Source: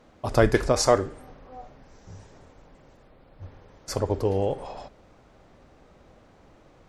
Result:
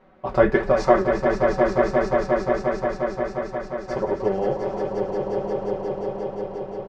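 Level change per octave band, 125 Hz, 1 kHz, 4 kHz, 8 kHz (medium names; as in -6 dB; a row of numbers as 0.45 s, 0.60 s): -1.0 dB, +7.5 dB, -6.5 dB, under -10 dB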